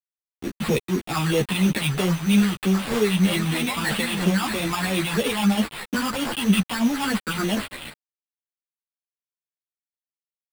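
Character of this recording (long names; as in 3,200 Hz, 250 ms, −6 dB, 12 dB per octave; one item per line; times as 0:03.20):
a quantiser's noise floor 6 bits, dither none
phaser sweep stages 6, 3.1 Hz, lowest notch 460–1,600 Hz
aliases and images of a low sample rate 6,100 Hz, jitter 0%
a shimmering, thickened sound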